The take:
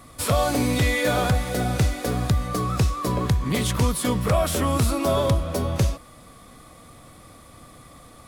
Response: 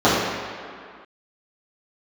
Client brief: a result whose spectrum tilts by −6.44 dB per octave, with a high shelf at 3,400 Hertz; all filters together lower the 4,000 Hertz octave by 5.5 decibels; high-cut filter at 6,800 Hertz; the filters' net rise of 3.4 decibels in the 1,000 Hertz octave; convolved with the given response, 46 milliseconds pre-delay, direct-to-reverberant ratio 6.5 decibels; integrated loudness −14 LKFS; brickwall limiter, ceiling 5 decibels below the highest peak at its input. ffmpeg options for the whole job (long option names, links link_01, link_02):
-filter_complex "[0:a]lowpass=6800,equalizer=frequency=1000:width_type=o:gain=5,highshelf=frequency=3400:gain=-4,equalizer=frequency=4000:width_type=o:gain=-4,alimiter=limit=-14.5dB:level=0:latency=1,asplit=2[link_01][link_02];[1:a]atrim=start_sample=2205,adelay=46[link_03];[link_02][link_03]afir=irnorm=-1:irlink=0,volume=-32.5dB[link_04];[link_01][link_04]amix=inputs=2:normalize=0,volume=9dB"